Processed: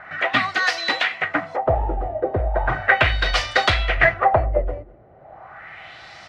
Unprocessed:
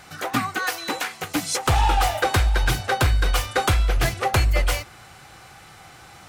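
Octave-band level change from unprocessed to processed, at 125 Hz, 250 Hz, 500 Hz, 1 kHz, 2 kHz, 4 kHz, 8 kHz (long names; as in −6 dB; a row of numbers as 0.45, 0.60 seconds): −4.0, −2.0, +5.5, +2.0, +6.5, +2.5, −11.5 decibels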